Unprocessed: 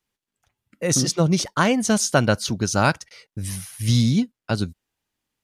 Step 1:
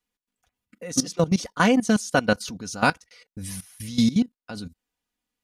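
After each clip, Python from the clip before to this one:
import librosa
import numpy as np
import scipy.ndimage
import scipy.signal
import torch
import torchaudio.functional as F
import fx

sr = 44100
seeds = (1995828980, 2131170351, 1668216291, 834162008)

y = x + 0.61 * np.pad(x, (int(4.1 * sr / 1000.0), 0))[:len(x)]
y = fx.level_steps(y, sr, step_db=17)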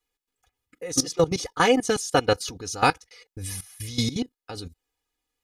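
y = x + 0.79 * np.pad(x, (int(2.4 * sr / 1000.0), 0))[:len(x)]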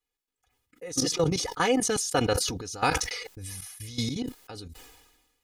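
y = fx.sustainer(x, sr, db_per_s=47.0)
y = y * 10.0 ** (-5.5 / 20.0)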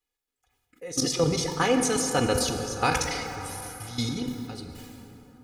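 y = fx.rev_plate(x, sr, seeds[0], rt60_s=3.8, hf_ratio=0.45, predelay_ms=0, drr_db=4.5)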